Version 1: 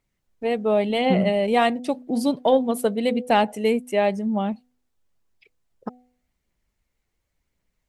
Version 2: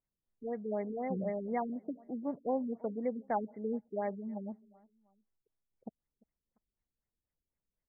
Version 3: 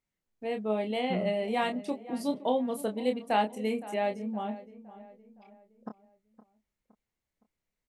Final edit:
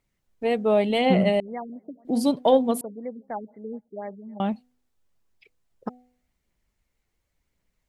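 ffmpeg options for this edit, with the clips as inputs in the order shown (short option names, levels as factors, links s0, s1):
-filter_complex "[1:a]asplit=2[s0][s1];[0:a]asplit=3[s2][s3][s4];[s2]atrim=end=1.402[s5];[s0]atrim=start=1.398:end=2.052[s6];[s3]atrim=start=2.048:end=2.812[s7];[s1]atrim=start=2.808:end=4.402[s8];[s4]atrim=start=4.398[s9];[s5][s6]acrossfade=d=0.004:c1=hsin:c2=hsin[s10];[s10][s7]acrossfade=d=0.004:c1=hsin:c2=hsin[s11];[s11][s8]acrossfade=d=0.004:c1=hsin:c2=hsin[s12];[s12][s9]acrossfade=d=0.004:c1=hsin:c2=hsin"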